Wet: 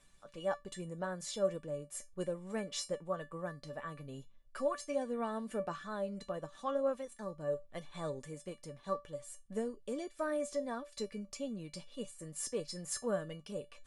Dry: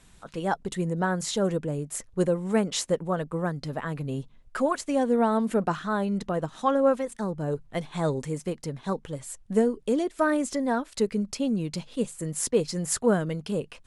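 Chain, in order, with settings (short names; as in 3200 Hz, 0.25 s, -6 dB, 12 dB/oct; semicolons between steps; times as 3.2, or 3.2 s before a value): reverse; upward compressor, threshold -43 dBFS; reverse; low shelf 150 Hz -3.5 dB; resonator 580 Hz, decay 0.19 s, harmonics all, mix 90%; gain +3 dB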